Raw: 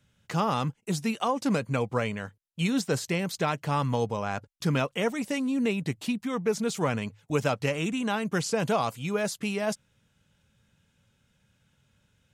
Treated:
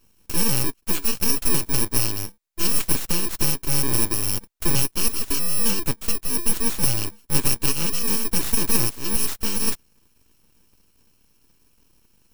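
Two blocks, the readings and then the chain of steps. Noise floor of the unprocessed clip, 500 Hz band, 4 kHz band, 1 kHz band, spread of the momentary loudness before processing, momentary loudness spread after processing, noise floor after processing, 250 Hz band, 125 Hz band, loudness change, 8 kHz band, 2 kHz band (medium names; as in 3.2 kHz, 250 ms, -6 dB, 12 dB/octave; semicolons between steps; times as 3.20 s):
-71 dBFS, -5.5 dB, +9.0 dB, -4.5 dB, 5 LU, 5 LU, -62 dBFS, -1.5 dB, +1.0 dB, +7.0 dB, +16.5 dB, 0.0 dB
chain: bit-reversed sample order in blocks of 64 samples; full-wave rectifier; trim +9 dB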